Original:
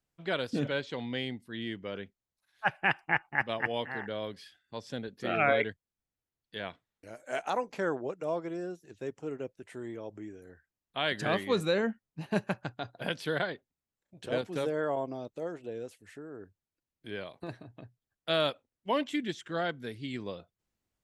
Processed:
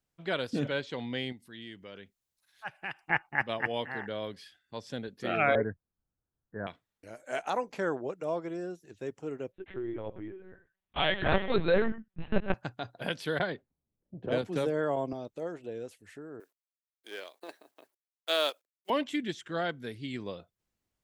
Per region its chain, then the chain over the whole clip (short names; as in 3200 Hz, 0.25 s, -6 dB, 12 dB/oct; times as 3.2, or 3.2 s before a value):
1.32–3.1 compressor 1.5:1, threshold -59 dBFS + high shelf 2800 Hz +8 dB
5.55–6.67 steep low-pass 1700 Hz 72 dB/oct + low shelf 260 Hz +8 dB
9.52–12.54 comb 5.3 ms, depth 96% + echo 0.101 s -14.5 dB + LPC vocoder at 8 kHz pitch kept
13.39–15.13 low-pass opened by the level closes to 350 Hz, open at -30.5 dBFS + low shelf 330 Hz +4.5 dB + three-band squash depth 40%
16.4–18.9 G.711 law mismatch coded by A + HPF 350 Hz 24 dB/oct + high shelf 6000 Hz +11.5 dB
whole clip: dry